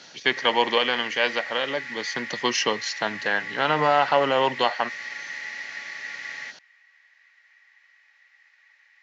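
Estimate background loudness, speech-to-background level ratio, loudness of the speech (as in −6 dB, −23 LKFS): −33.5 LKFS, 9.5 dB, −24.0 LKFS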